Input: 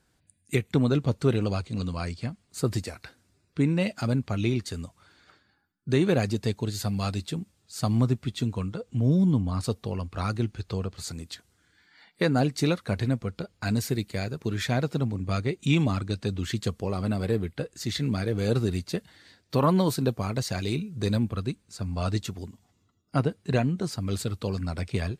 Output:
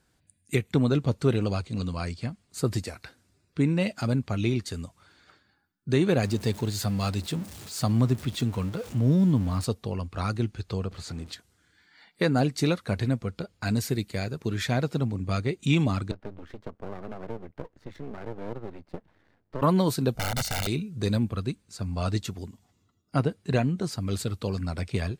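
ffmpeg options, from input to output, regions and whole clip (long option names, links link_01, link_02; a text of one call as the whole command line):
ffmpeg -i in.wav -filter_complex "[0:a]asettb=1/sr,asplit=3[link_01][link_02][link_03];[link_01]atrim=end=6.234[link_04];[link_02]atrim=start=6.23:end=9.65,asetpts=PTS-STARTPTS,afade=type=in:duration=0.004:curve=qsin,afade=type=out:start_time=3.416:duration=0.004:curve=qsin,aeval=exprs='val(0)+0.5*0.0133*sgn(val(0))':channel_layout=same,highpass=41[link_05];[link_03]atrim=start=9.646[link_06];[link_04][link_05]acrossfade=duration=0.004:curve1=hsin:curve2=qsin[link_07];[link_07][link_06]acrossfade=duration=0.004:curve1=qsin:curve2=hsin,asettb=1/sr,asplit=3[link_08][link_09][link_10];[link_08]atrim=end=10.914[link_11];[link_09]atrim=start=10.91:end=11.33,asetpts=PTS-STARTPTS,afade=type=in:duration=0.004:curve=qsin,afade=type=out:start_time=0.416:duration=0.004:curve=qsin,aeval=exprs='val(0)+0.5*0.00668*sgn(val(0))':channel_layout=same,aemphasis=mode=reproduction:type=50fm[link_12];[link_10]atrim=start=11.326[link_13];[link_11][link_12]acrossfade=duration=0.004:curve1=hsin:curve2=qsin[link_14];[link_14][link_13]acrossfade=duration=0.004:curve1=qsin:curve2=hsin,asettb=1/sr,asplit=3[link_15][link_16][link_17];[link_15]atrim=end=16.114[link_18];[link_16]atrim=start=16.11:end=19.62,asetpts=PTS-STARTPTS,afade=type=in:duration=0.004:curve=qsin,afade=type=out:start_time=3.506:duration=0.004:curve=qsin,lowpass=1100,acrossover=split=150|340[link_19][link_20][link_21];[link_19]acompressor=threshold=-43dB:ratio=4[link_22];[link_20]acompressor=threshold=-42dB:ratio=4[link_23];[link_21]acompressor=threshold=-32dB:ratio=4[link_24];[link_22][link_23][link_24]amix=inputs=3:normalize=0,aeval=exprs='max(val(0),0)':channel_layout=same[link_25];[link_17]atrim=start=19.616[link_26];[link_18][link_25]acrossfade=duration=0.004:curve1=hsin:curve2=qsin[link_27];[link_27][link_26]acrossfade=duration=0.004:curve1=qsin:curve2=hsin,asettb=1/sr,asplit=3[link_28][link_29][link_30];[link_28]atrim=end=20.154[link_31];[link_29]atrim=start=20.15:end=20.67,asetpts=PTS-STARTPTS,afade=type=in:duration=0.004:curve=qsin,afade=type=out:start_time=0.516:duration=0.004:curve=qsin,aeval=exprs='val(0)+0.00282*(sin(2*PI*50*n/s)+sin(2*PI*2*50*n/s)/2+sin(2*PI*3*50*n/s)/3+sin(2*PI*4*50*n/s)/4+sin(2*PI*5*50*n/s)/5)':channel_layout=same,aeval=exprs='(mod(15.8*val(0)+1,2)-1)/15.8':channel_layout=same,aecho=1:1:1.4:0.7,atrim=end_sample=22932[link_32];[link_30]atrim=start=20.666[link_33];[link_31][link_32]acrossfade=duration=0.004:curve1=hsin:curve2=qsin[link_34];[link_34][link_33]acrossfade=duration=0.004:curve1=qsin:curve2=hsin" out.wav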